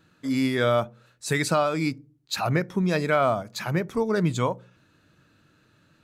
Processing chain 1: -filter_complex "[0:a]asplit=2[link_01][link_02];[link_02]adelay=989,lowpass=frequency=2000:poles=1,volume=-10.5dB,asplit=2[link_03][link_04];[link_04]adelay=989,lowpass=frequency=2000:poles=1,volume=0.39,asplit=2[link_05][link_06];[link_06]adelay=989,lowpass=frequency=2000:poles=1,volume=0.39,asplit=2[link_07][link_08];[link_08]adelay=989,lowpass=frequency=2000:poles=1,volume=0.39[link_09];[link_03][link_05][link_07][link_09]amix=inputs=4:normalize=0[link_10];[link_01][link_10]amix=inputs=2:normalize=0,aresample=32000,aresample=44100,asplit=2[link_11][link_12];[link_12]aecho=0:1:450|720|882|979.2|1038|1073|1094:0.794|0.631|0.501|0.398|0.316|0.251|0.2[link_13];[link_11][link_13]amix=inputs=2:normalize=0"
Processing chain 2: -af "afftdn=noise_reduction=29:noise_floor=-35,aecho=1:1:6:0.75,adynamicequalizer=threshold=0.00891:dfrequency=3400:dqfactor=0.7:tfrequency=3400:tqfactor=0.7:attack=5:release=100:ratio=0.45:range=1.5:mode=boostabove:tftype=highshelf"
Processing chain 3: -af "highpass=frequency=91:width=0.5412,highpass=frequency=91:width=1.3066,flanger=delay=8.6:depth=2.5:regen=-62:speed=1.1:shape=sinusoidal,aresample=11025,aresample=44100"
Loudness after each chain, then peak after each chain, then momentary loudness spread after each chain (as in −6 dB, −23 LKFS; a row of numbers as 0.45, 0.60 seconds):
−22.0, −23.5, −29.5 LKFS; −7.0, −7.0, −13.0 dBFS; 6, 11, 10 LU